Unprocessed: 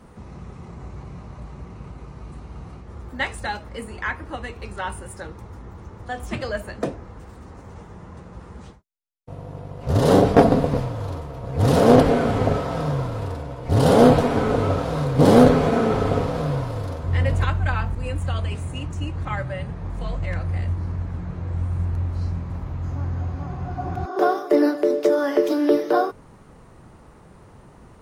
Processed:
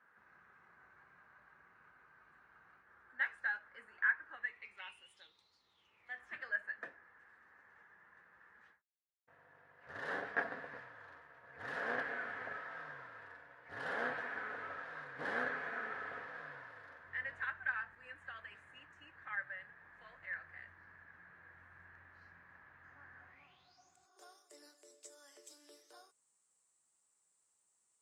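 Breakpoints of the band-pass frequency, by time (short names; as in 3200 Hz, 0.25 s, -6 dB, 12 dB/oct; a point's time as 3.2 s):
band-pass, Q 9.9
4.32 s 1600 Hz
5.58 s 4500 Hz
6.24 s 1700 Hz
23.27 s 1700 Hz
23.95 s 7800 Hz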